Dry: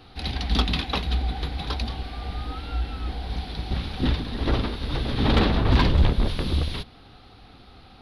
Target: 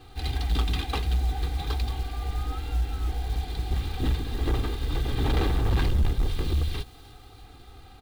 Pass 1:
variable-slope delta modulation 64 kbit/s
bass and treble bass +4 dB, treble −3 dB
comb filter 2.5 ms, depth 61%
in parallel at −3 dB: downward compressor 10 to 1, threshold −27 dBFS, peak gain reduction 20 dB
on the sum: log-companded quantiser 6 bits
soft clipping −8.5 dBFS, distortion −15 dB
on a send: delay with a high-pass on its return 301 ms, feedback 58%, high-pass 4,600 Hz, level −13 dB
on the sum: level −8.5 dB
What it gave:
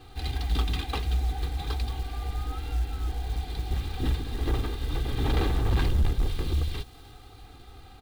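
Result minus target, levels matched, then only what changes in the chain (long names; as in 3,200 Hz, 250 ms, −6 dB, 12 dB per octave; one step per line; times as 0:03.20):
downward compressor: peak gain reduction +9 dB
change: downward compressor 10 to 1, threshold −17 dBFS, peak gain reduction 11 dB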